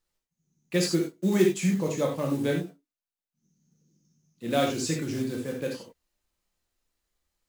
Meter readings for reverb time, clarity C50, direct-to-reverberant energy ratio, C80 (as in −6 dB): non-exponential decay, 5.0 dB, −0.5 dB, 10.0 dB